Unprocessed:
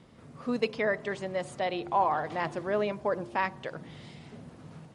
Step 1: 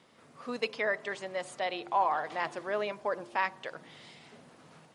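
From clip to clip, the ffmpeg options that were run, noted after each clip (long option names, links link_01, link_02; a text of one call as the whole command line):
ffmpeg -i in.wav -af "highpass=frequency=760:poles=1,volume=1dB" out.wav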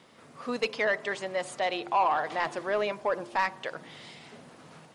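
ffmpeg -i in.wav -af "asoftclip=type=tanh:threshold=-22dB,volume=5dB" out.wav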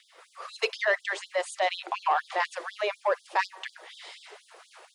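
ffmpeg -i in.wav -af "afftfilt=real='re*gte(b*sr/1024,330*pow(3300/330,0.5+0.5*sin(2*PI*4.1*pts/sr)))':imag='im*gte(b*sr/1024,330*pow(3300/330,0.5+0.5*sin(2*PI*4.1*pts/sr)))':win_size=1024:overlap=0.75,volume=3dB" out.wav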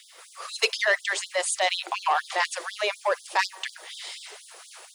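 ffmpeg -i in.wav -af "crystalizer=i=4:c=0" out.wav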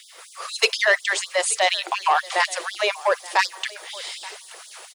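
ffmpeg -i in.wav -af "aecho=1:1:878:0.0891,volume=4.5dB" out.wav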